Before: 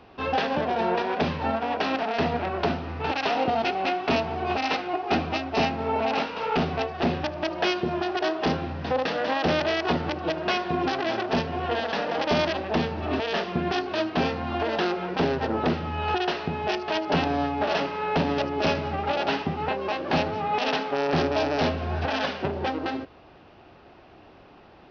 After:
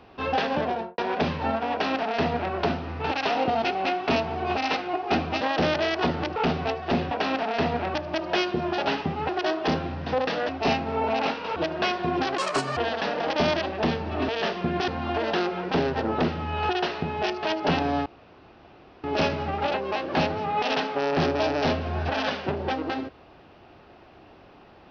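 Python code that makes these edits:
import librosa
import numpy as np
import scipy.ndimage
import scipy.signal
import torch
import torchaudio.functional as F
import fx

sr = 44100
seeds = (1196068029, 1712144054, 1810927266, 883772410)

y = fx.studio_fade_out(x, sr, start_s=0.65, length_s=0.33)
y = fx.edit(y, sr, fx.duplicate(start_s=1.71, length_s=0.83, to_s=7.23),
    fx.swap(start_s=5.41, length_s=1.07, other_s=9.27, other_length_s=0.95),
    fx.speed_span(start_s=11.04, length_s=0.64, speed=1.65),
    fx.cut(start_s=13.79, length_s=0.54),
    fx.room_tone_fill(start_s=17.51, length_s=0.98),
    fx.move(start_s=19.19, length_s=0.51, to_s=8.07), tone=tone)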